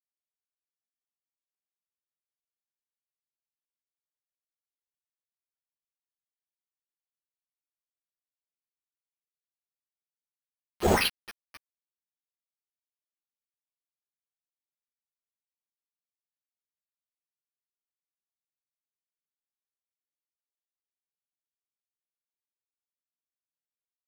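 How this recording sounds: a quantiser's noise floor 6-bit, dither none; random-step tremolo; aliases and images of a low sample rate 7300 Hz, jitter 0%; a shimmering, thickened sound

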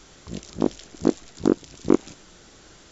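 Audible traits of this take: noise floor -51 dBFS; spectral tilt -6.5 dB/oct

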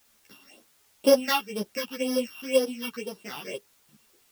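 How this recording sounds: a buzz of ramps at a fixed pitch in blocks of 16 samples; phasing stages 6, 2 Hz, lowest notch 520–2400 Hz; a quantiser's noise floor 10-bit, dither triangular; a shimmering, thickened sound

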